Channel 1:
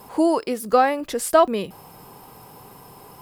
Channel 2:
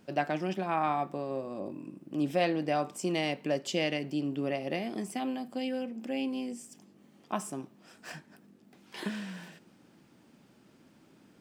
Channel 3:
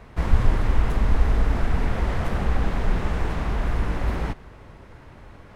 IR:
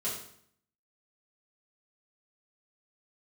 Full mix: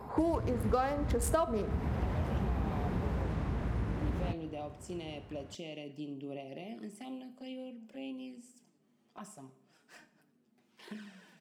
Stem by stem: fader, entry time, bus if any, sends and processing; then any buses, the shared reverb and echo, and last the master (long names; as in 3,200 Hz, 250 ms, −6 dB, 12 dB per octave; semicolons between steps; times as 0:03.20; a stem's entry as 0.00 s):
−1.0 dB, 0.00 s, send −15.5 dB, adaptive Wiener filter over 15 samples
−10.0 dB, 1.85 s, send −13 dB, brickwall limiter −22 dBFS, peak gain reduction 7 dB; flanger swept by the level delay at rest 10 ms, full sweep at −30 dBFS
−13.0 dB, 0.00 s, no send, high-pass filter 68 Hz 24 dB per octave; low-shelf EQ 440 Hz +11 dB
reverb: on, RT60 0.65 s, pre-delay 4 ms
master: downward compressor 6 to 1, threshold −28 dBFS, peak gain reduction 16 dB